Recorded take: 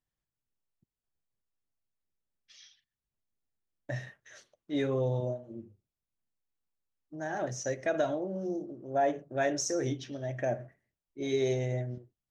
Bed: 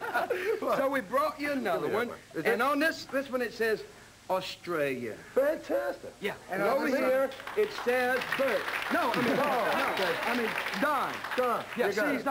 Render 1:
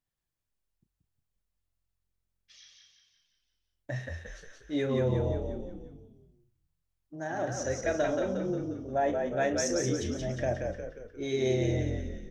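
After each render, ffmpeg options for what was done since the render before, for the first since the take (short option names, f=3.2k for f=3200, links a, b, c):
-filter_complex "[0:a]asplit=2[a][b];[b]adelay=31,volume=-12dB[c];[a][c]amix=inputs=2:normalize=0,asplit=2[d][e];[e]asplit=6[f][g][h][i][j][k];[f]adelay=178,afreqshift=-44,volume=-4dB[l];[g]adelay=356,afreqshift=-88,volume=-10dB[m];[h]adelay=534,afreqshift=-132,volume=-16dB[n];[i]adelay=712,afreqshift=-176,volume=-22.1dB[o];[j]adelay=890,afreqshift=-220,volume=-28.1dB[p];[k]adelay=1068,afreqshift=-264,volume=-34.1dB[q];[l][m][n][o][p][q]amix=inputs=6:normalize=0[r];[d][r]amix=inputs=2:normalize=0"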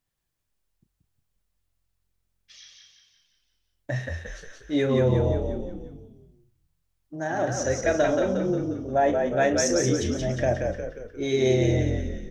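-af "volume=6.5dB"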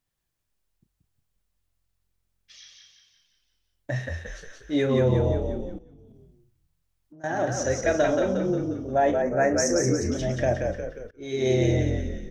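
-filter_complex "[0:a]asettb=1/sr,asplit=3[a][b][c];[a]atrim=end=5.784[d];[b]atrim=start=5.78:end=7.24,asetpts=PTS-STARTPTS,afade=t=in:d=0.004:c=qsin,afade=t=out:st=1.456:d=0.004:c=qsin,acompressor=threshold=-46dB:ratio=10:attack=3.2:release=140:knee=1:detection=peak[e];[c]atrim=start=7.236[f];[d][e]acrossfade=d=0.004:c1=hsin:c2=qsin[g];[g][f]acrossfade=d=0.004:c1=qsin:c2=hsin,asettb=1/sr,asplit=3[h][i][j];[h]atrim=end=9.224[k];[i]atrim=start=9.22:end=10.12,asetpts=PTS-STARTPTS,afade=t=in:d=0.004:c=qsin,afade=t=out:st=0.896:d=0.004:c=qsin,asuperstop=centerf=3300:order=4:qfactor=1.2[l];[j]atrim=start=10.116[m];[k][l]acrossfade=d=0.004:c1=hsin:c2=qsin[n];[n][m]acrossfade=d=0.004:c1=qsin:c2=hsin,asplit=2[o][p];[o]atrim=end=11.11,asetpts=PTS-STARTPTS,afade=t=out:st=11.106:d=0.004:c=hsin:silence=0.0944061[q];[p]atrim=start=11.11,asetpts=PTS-STARTPTS,afade=t=in:d=0.47:silence=0.0944061[r];[q][r]concat=n=2:v=0:a=1"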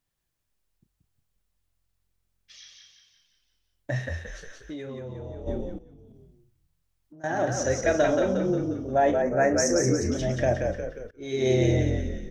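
-filter_complex "[0:a]asplit=3[a][b][c];[a]afade=t=out:st=4.21:d=0.02[d];[b]acompressor=threshold=-33dB:ratio=16:attack=3.2:release=140:knee=1:detection=peak,afade=t=in:st=4.21:d=0.02,afade=t=out:st=5.46:d=0.02[e];[c]afade=t=in:st=5.46:d=0.02[f];[d][e][f]amix=inputs=3:normalize=0"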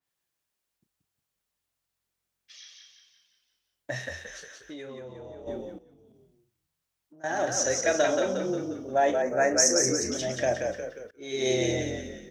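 -af "highpass=f=430:p=1,adynamicequalizer=threshold=0.00562:dfrequency=3200:dqfactor=0.7:tfrequency=3200:tqfactor=0.7:attack=5:release=100:ratio=0.375:range=3.5:mode=boostabove:tftype=highshelf"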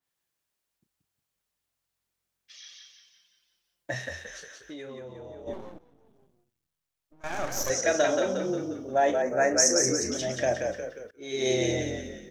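-filter_complex "[0:a]asettb=1/sr,asplit=3[a][b][c];[a]atrim=end=2.634[d];[b]atrim=start=2.63:end=3.94,asetpts=PTS-STARTPTS,afade=t=in:d=0.004:c=qsin,afade=t=out:st=1.306:d=0.004:c=qsin,aecho=1:1:5.8:0.65,atrim=end_sample=57771[e];[c]atrim=start=3.936[f];[d][e]acrossfade=d=0.004:c1=hsin:c2=qsin[g];[g][f]acrossfade=d=0.004:c1=qsin:c2=hsin,asettb=1/sr,asplit=3[h][i][j];[h]atrim=end=5.534[k];[i]atrim=start=5.53:end=7.7,asetpts=PTS-STARTPTS,afade=t=in:d=0.004:c=qsin,afade=t=out:st=2.166:d=0.004:c=qsin,aeval=exprs='max(val(0),0)':c=same[l];[j]atrim=start=7.696[m];[k][l]acrossfade=d=0.004:c1=hsin:c2=qsin[n];[n][m]acrossfade=d=0.004:c1=qsin:c2=hsin"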